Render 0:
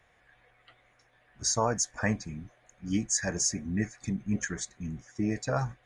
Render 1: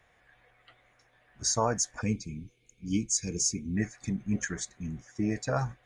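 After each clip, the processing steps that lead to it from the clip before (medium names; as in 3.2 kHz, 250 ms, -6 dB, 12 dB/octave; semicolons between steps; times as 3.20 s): time-frequency box 2.01–3.76 s, 500–2100 Hz -22 dB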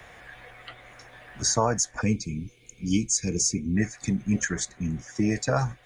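three bands compressed up and down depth 40%; trim +5.5 dB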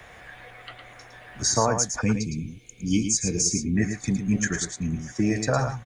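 delay 110 ms -7.5 dB; trim +1 dB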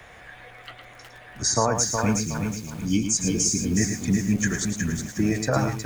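bit-crushed delay 366 ms, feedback 35%, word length 7-bit, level -5 dB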